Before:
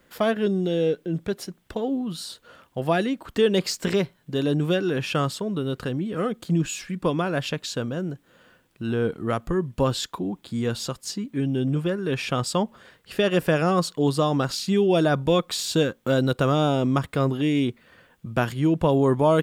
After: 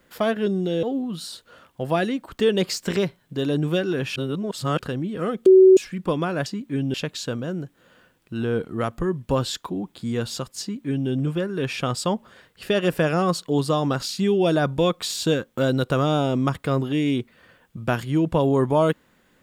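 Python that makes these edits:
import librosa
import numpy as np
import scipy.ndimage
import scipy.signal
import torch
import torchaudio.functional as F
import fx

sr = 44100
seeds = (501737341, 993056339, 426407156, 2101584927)

y = fx.edit(x, sr, fx.cut(start_s=0.83, length_s=0.97),
    fx.reverse_span(start_s=5.13, length_s=0.63),
    fx.bleep(start_s=6.43, length_s=0.31, hz=377.0, db=-7.5),
    fx.duplicate(start_s=11.1, length_s=0.48, to_s=7.43), tone=tone)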